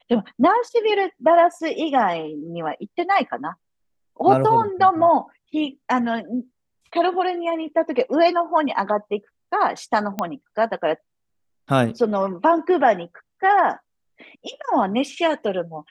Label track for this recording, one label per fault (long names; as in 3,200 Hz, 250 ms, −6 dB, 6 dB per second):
10.190000	10.190000	click −11 dBFS